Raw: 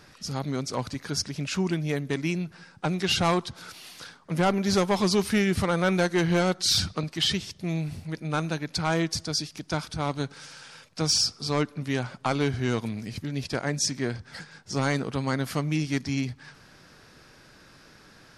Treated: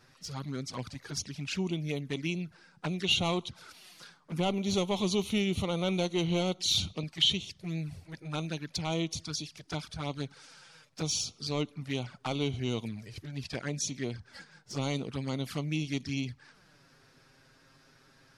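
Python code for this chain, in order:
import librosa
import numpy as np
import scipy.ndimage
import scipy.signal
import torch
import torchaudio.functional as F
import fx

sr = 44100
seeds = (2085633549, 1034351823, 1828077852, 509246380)

y = fx.dynamic_eq(x, sr, hz=3200.0, q=1.1, threshold_db=-44.0, ratio=4.0, max_db=7)
y = fx.env_flanger(y, sr, rest_ms=8.8, full_db=-23.0)
y = y * librosa.db_to_amplitude(-5.5)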